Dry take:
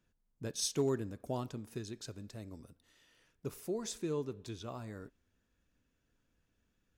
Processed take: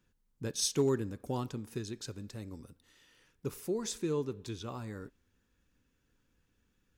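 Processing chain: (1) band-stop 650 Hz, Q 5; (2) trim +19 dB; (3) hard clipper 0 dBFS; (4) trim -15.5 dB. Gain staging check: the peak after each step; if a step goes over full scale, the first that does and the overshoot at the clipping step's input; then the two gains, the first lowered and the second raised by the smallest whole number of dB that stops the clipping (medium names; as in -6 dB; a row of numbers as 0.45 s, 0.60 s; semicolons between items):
-22.5 dBFS, -3.5 dBFS, -3.5 dBFS, -19.0 dBFS; nothing clips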